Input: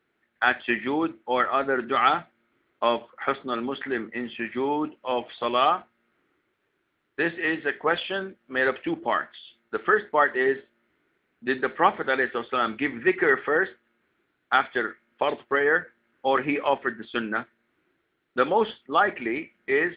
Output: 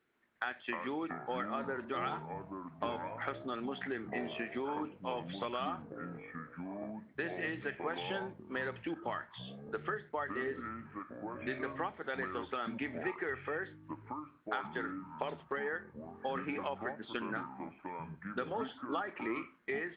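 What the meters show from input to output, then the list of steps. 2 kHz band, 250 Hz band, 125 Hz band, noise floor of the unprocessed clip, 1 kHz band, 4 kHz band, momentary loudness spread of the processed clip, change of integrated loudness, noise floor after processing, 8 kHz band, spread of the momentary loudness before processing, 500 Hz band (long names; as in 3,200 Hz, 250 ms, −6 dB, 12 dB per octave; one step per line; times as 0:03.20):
−14.5 dB, −10.0 dB, −3.5 dB, −74 dBFS, −14.0 dB, −13.5 dB, 7 LU, −14.0 dB, −61 dBFS, can't be measured, 9 LU, −13.5 dB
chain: downward compressor 6 to 1, threshold −30 dBFS, peak gain reduction 16 dB
delay with pitch and tempo change per echo 134 ms, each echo −6 semitones, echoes 3, each echo −6 dB
level −5 dB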